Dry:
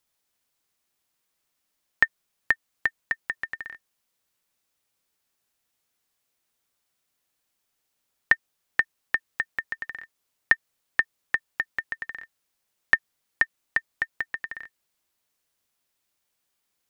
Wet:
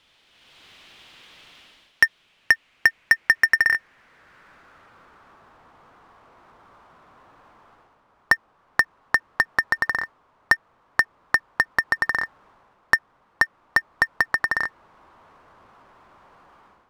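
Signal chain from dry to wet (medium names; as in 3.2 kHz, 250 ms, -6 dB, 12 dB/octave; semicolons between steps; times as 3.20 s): low-pass sweep 3.2 kHz -> 1.1 kHz, 2.07–5.58 s; power-law waveshaper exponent 0.7; level rider gain up to 12 dB; waveshaping leveller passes 1; trim -3 dB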